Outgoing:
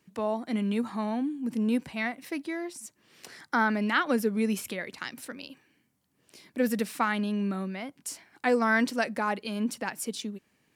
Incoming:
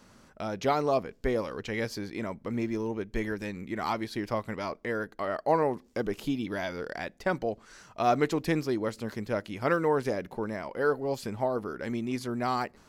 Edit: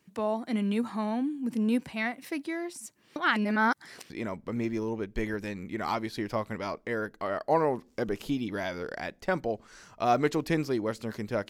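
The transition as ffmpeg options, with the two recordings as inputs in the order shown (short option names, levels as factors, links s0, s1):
-filter_complex "[0:a]apad=whole_dur=11.49,atrim=end=11.49,asplit=2[s0][s1];[s0]atrim=end=3.162[s2];[s1]atrim=start=3.158:end=4.102,asetpts=PTS-STARTPTS,areverse[s3];[1:a]atrim=start=2.078:end=9.47[s4];[s2][s3]acrossfade=d=0.004:c1=hsin:c2=hsin[s5];[s5][s4]acrossfade=d=0.004:c1=hsin:c2=hsin"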